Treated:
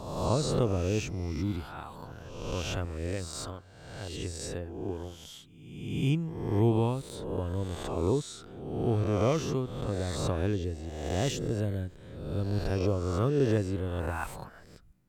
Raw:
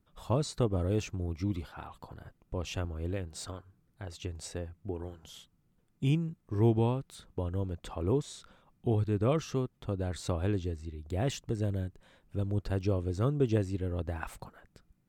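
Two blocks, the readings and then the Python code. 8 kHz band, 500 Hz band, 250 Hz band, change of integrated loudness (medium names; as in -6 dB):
+5.0 dB, +3.0 dB, +2.0 dB, +2.0 dB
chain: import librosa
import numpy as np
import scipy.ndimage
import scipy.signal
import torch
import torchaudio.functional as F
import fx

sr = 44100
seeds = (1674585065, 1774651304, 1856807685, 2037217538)

y = fx.spec_swells(x, sr, rise_s=1.1)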